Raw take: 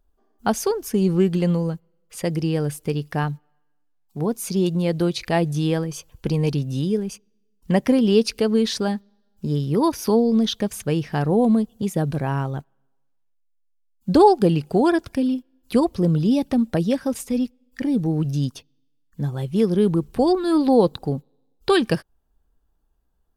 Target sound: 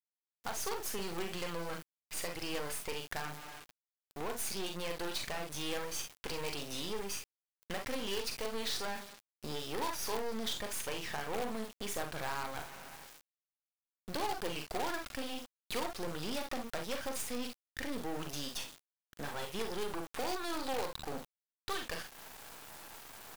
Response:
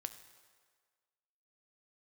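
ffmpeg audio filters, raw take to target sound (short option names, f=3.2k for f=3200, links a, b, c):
-filter_complex "[0:a]asplit=2[a][b];[b]asoftclip=type=hard:threshold=-20.5dB,volume=-10.5dB[c];[a][c]amix=inputs=2:normalize=0,highpass=830,highshelf=f=5.5k:g=-4.5,areverse,acompressor=mode=upward:threshold=-34dB:ratio=2.5,areverse,alimiter=limit=-19.5dB:level=0:latency=1:release=266,acompressor=threshold=-40dB:ratio=2,aecho=1:1:41|53|66:0.422|0.211|0.188,acrusher=bits=6:dc=4:mix=0:aa=0.000001,asoftclip=type=tanh:threshold=-35.5dB,volume=7dB"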